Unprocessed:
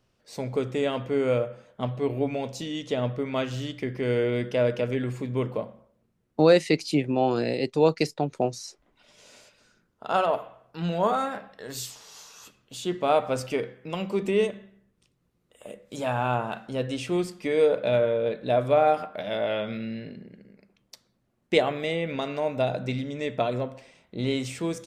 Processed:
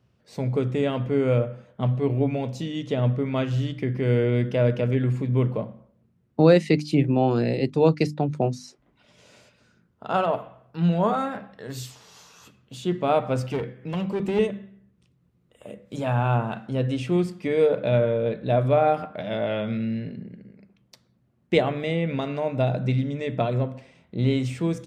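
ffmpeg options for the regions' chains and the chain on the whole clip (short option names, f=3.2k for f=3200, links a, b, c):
-filter_complex "[0:a]asettb=1/sr,asplit=3[a][b][c];[a]atrim=end=13.464[d];[b]atrim=start=13.46:end=14.39,asetpts=PTS-STARTPTS,afade=t=in:d=0.004:c=qsin,afade=t=out:st=0.926:d=0.004:c=qsin,acompressor=mode=upward:threshold=-47dB:ratio=2.5:attack=3.2:release=140:knee=2.83:detection=peak,aeval=exprs='clip(val(0),-1,0.0335)':c=same[e];[c]atrim=start=14.386[f];[d][e]acrossfade=d=0.004:c1=hsin:c2=qsin[g];[g][f]acrossfade=d=0.004:c1=qsin:c2=hsin,highpass=78,bass=f=250:g=11,treble=f=4k:g=-6,bandreject=f=50:t=h:w=6,bandreject=f=100:t=h:w=6,bandreject=f=150:t=h:w=6,bandreject=f=200:t=h:w=6,bandreject=f=250:t=h:w=6,bandreject=f=300:t=h:w=6"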